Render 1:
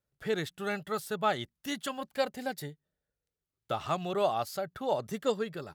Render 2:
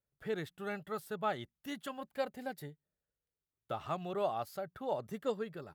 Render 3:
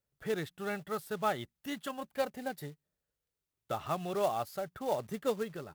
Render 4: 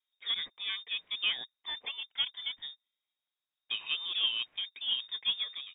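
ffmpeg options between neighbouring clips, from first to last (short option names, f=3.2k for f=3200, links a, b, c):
-af "equalizer=f=6k:t=o:w=2:g=-7.5,volume=-5.5dB"
-af "acrusher=bits=4:mode=log:mix=0:aa=0.000001,volume=3dB"
-af "lowpass=f=3.2k:t=q:w=0.5098,lowpass=f=3.2k:t=q:w=0.6013,lowpass=f=3.2k:t=q:w=0.9,lowpass=f=3.2k:t=q:w=2.563,afreqshift=-3800"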